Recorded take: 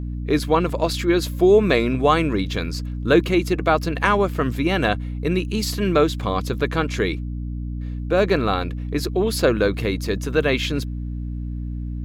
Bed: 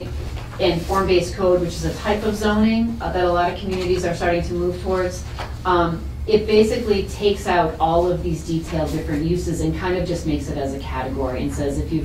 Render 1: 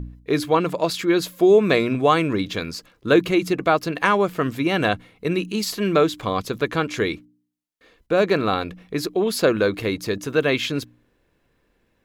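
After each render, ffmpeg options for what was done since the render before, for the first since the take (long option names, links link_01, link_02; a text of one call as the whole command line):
ffmpeg -i in.wav -af "bandreject=frequency=60:width_type=h:width=4,bandreject=frequency=120:width_type=h:width=4,bandreject=frequency=180:width_type=h:width=4,bandreject=frequency=240:width_type=h:width=4,bandreject=frequency=300:width_type=h:width=4" out.wav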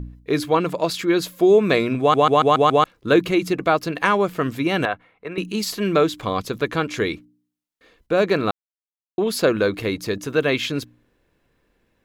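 ffmpeg -i in.wav -filter_complex "[0:a]asettb=1/sr,asplit=3[link_01][link_02][link_03];[link_01]atrim=end=4.854[link_04];[link_02]atrim=start=4.85:end=5.38,asetpts=PTS-STARTPTS,afade=type=in:duration=0.004:curve=qsin,afade=type=out:start_time=0.526:duration=0.004:curve=qsin,acrossover=split=540 2400:gain=0.2 1 0.112[link_05][link_06][link_07];[link_05][link_06][link_07]amix=inputs=3:normalize=0[link_08];[link_03]atrim=start=5.376[link_09];[link_04][link_08]acrossfade=duration=0.004:curve1=hsin:curve2=qsin[link_10];[link_10][link_09]acrossfade=duration=0.004:curve1=qsin:curve2=hsin,asplit=9[link_11][link_12][link_13][link_14][link_15][link_16][link_17][link_18][link_19];[link_11]atrim=end=2.142[link_20];[link_12]atrim=start=1.998:end=2.142[link_21];[link_13]atrim=start=1.998:end=2.142[link_22];[link_14]atrim=start=1.998:end=2.142[link_23];[link_15]atrim=start=1.998:end=2.142[link_24];[link_16]atrim=start=1.998:end=2.142[link_25];[link_17]atrim=start=2.838:end=8.51,asetpts=PTS-STARTPTS,afade=type=out:start_time=5.668:duration=0.004:curve=hsin[link_26];[link_18]atrim=start=8.51:end=9.18,asetpts=PTS-STARTPTS,volume=0[link_27];[link_19]atrim=start=9.18,asetpts=PTS-STARTPTS,afade=type=in:duration=0.004:curve=hsin[link_28];[link_20][link_21]acrossfade=duration=0.004:curve1=hsin:curve2=hsin[link_29];[link_29][link_22]acrossfade=duration=0.004:curve1=hsin:curve2=hsin[link_30];[link_30][link_23]acrossfade=duration=0.004:curve1=hsin:curve2=hsin[link_31];[link_31][link_24]acrossfade=duration=0.004:curve1=hsin:curve2=hsin[link_32];[link_32][link_25]acrossfade=duration=0.004:curve1=hsin:curve2=hsin[link_33];[link_26][link_27][link_28]concat=n=3:v=0:a=1[link_34];[link_33][link_34]acrossfade=duration=0.004:curve1=hsin:curve2=hsin" out.wav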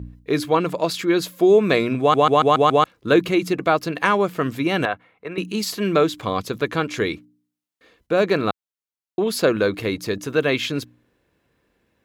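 ffmpeg -i in.wav -af "highpass=58" out.wav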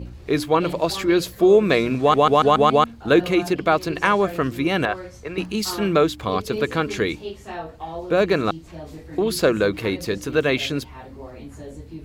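ffmpeg -i in.wav -i bed.wav -filter_complex "[1:a]volume=-15dB[link_01];[0:a][link_01]amix=inputs=2:normalize=0" out.wav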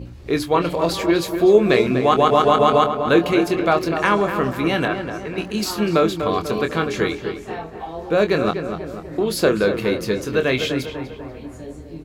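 ffmpeg -i in.wav -filter_complex "[0:a]asplit=2[link_01][link_02];[link_02]adelay=24,volume=-8dB[link_03];[link_01][link_03]amix=inputs=2:normalize=0,asplit=2[link_04][link_05];[link_05]adelay=246,lowpass=frequency=2100:poles=1,volume=-7.5dB,asplit=2[link_06][link_07];[link_07]adelay=246,lowpass=frequency=2100:poles=1,volume=0.53,asplit=2[link_08][link_09];[link_09]adelay=246,lowpass=frequency=2100:poles=1,volume=0.53,asplit=2[link_10][link_11];[link_11]adelay=246,lowpass=frequency=2100:poles=1,volume=0.53,asplit=2[link_12][link_13];[link_13]adelay=246,lowpass=frequency=2100:poles=1,volume=0.53,asplit=2[link_14][link_15];[link_15]adelay=246,lowpass=frequency=2100:poles=1,volume=0.53[link_16];[link_04][link_06][link_08][link_10][link_12][link_14][link_16]amix=inputs=7:normalize=0" out.wav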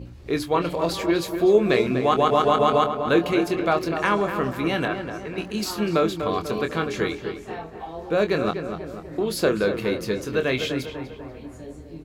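ffmpeg -i in.wav -af "volume=-4dB" out.wav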